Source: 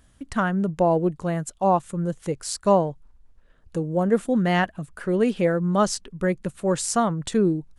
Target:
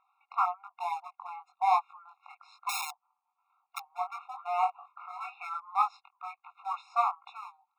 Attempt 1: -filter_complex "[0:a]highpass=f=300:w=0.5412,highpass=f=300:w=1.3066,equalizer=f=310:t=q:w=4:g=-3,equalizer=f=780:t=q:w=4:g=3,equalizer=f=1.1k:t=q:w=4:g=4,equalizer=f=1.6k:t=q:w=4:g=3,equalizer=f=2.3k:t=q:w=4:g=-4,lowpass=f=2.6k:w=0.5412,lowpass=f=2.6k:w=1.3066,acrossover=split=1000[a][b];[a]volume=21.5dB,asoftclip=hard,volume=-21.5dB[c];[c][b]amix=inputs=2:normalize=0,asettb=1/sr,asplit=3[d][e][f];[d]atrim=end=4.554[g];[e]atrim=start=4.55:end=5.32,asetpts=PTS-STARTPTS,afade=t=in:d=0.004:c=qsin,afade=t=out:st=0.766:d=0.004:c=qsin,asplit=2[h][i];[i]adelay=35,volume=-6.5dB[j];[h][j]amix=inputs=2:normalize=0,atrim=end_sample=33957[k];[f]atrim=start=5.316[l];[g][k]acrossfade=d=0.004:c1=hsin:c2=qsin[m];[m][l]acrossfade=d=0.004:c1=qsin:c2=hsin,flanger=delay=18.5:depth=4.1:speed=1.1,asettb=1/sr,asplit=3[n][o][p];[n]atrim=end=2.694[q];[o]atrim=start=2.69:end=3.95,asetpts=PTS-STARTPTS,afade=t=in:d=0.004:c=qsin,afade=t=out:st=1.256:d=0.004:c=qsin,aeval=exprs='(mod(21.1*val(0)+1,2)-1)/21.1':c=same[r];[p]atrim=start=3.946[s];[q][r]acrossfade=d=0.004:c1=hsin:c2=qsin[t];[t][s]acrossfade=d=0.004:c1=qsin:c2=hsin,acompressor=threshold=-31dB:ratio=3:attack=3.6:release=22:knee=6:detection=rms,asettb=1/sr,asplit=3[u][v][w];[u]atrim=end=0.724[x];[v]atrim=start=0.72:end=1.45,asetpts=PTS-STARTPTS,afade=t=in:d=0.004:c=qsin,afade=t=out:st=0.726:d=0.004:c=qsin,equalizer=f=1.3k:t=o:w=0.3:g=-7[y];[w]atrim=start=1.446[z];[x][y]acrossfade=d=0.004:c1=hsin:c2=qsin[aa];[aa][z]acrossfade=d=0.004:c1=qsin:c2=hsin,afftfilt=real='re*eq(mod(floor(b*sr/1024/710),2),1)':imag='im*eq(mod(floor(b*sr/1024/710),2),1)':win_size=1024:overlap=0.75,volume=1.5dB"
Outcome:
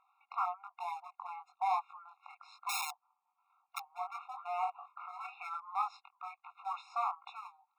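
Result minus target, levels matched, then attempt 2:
compressor: peak gain reduction +10 dB
-filter_complex "[0:a]highpass=f=300:w=0.5412,highpass=f=300:w=1.3066,equalizer=f=310:t=q:w=4:g=-3,equalizer=f=780:t=q:w=4:g=3,equalizer=f=1.1k:t=q:w=4:g=4,equalizer=f=1.6k:t=q:w=4:g=3,equalizer=f=2.3k:t=q:w=4:g=-4,lowpass=f=2.6k:w=0.5412,lowpass=f=2.6k:w=1.3066,acrossover=split=1000[a][b];[a]volume=21.5dB,asoftclip=hard,volume=-21.5dB[c];[c][b]amix=inputs=2:normalize=0,asettb=1/sr,asplit=3[d][e][f];[d]atrim=end=4.554[g];[e]atrim=start=4.55:end=5.32,asetpts=PTS-STARTPTS,afade=t=in:d=0.004:c=qsin,afade=t=out:st=0.766:d=0.004:c=qsin,asplit=2[h][i];[i]adelay=35,volume=-6.5dB[j];[h][j]amix=inputs=2:normalize=0,atrim=end_sample=33957[k];[f]atrim=start=5.316[l];[g][k]acrossfade=d=0.004:c1=hsin:c2=qsin[m];[m][l]acrossfade=d=0.004:c1=qsin:c2=hsin,flanger=delay=18.5:depth=4.1:speed=1.1,asettb=1/sr,asplit=3[n][o][p];[n]atrim=end=0.724[q];[o]atrim=start=0.72:end=1.45,asetpts=PTS-STARTPTS,afade=t=in:d=0.004:c=qsin,afade=t=out:st=0.726:d=0.004:c=qsin,equalizer=f=1.3k:t=o:w=0.3:g=-7[r];[p]atrim=start=1.446[s];[q][r]acrossfade=d=0.004:c1=hsin:c2=qsin[t];[t][s]acrossfade=d=0.004:c1=qsin:c2=hsin,asettb=1/sr,asplit=3[u][v][w];[u]atrim=end=2.694[x];[v]atrim=start=2.69:end=3.95,asetpts=PTS-STARTPTS,afade=t=in:d=0.004:c=qsin,afade=t=out:st=1.256:d=0.004:c=qsin,aeval=exprs='(mod(21.1*val(0)+1,2)-1)/21.1':c=same[y];[w]atrim=start=3.946[z];[x][y]acrossfade=d=0.004:c1=hsin:c2=qsin[aa];[aa][z]acrossfade=d=0.004:c1=qsin:c2=hsin,afftfilt=real='re*eq(mod(floor(b*sr/1024/710),2),1)':imag='im*eq(mod(floor(b*sr/1024/710),2),1)':win_size=1024:overlap=0.75,volume=1.5dB"

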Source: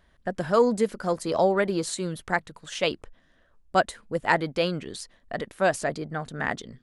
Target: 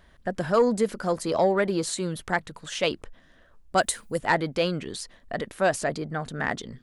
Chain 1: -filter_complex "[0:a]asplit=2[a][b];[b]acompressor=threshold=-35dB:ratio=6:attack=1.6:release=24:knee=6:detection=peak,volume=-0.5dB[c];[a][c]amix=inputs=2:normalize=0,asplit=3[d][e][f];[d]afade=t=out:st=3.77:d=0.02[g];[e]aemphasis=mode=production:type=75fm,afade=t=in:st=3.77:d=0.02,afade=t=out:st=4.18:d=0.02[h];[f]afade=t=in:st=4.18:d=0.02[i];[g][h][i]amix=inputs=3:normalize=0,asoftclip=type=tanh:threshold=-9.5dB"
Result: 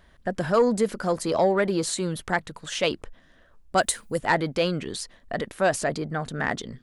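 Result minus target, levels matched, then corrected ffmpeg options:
compressor: peak gain reduction -9 dB
-filter_complex "[0:a]asplit=2[a][b];[b]acompressor=threshold=-45.5dB:ratio=6:attack=1.6:release=24:knee=6:detection=peak,volume=-0.5dB[c];[a][c]amix=inputs=2:normalize=0,asplit=3[d][e][f];[d]afade=t=out:st=3.77:d=0.02[g];[e]aemphasis=mode=production:type=75fm,afade=t=in:st=3.77:d=0.02,afade=t=out:st=4.18:d=0.02[h];[f]afade=t=in:st=4.18:d=0.02[i];[g][h][i]amix=inputs=3:normalize=0,asoftclip=type=tanh:threshold=-9.5dB"

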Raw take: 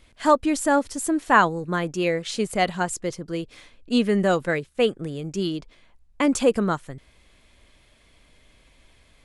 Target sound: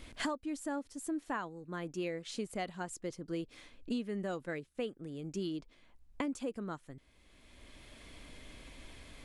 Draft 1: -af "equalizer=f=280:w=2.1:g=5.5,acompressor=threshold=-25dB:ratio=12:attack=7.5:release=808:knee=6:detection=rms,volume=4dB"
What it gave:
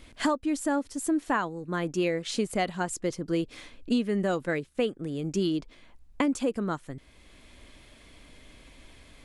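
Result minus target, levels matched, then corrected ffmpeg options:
compressor: peak gain reduction -10.5 dB
-af "equalizer=f=280:w=2.1:g=5.5,acompressor=threshold=-36.5dB:ratio=12:attack=7.5:release=808:knee=6:detection=rms,volume=4dB"

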